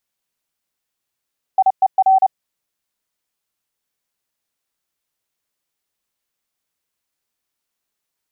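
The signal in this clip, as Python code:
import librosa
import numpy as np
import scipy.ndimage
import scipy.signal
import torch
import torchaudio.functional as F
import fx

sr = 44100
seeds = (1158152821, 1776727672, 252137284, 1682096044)

y = fx.morse(sr, text='IER', wpm=30, hz=765.0, level_db=-8.5)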